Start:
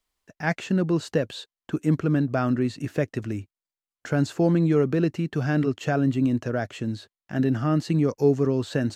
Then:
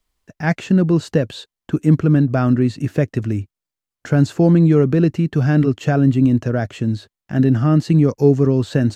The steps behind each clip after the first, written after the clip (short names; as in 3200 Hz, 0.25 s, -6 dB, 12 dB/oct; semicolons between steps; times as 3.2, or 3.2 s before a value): low shelf 240 Hz +9 dB; gain +3.5 dB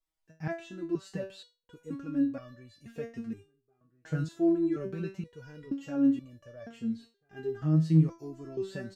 outdoor echo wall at 230 m, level -28 dB; stepped resonator 2.1 Hz 160–580 Hz; gain -4 dB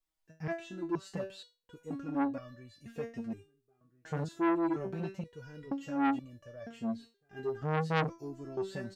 core saturation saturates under 1600 Hz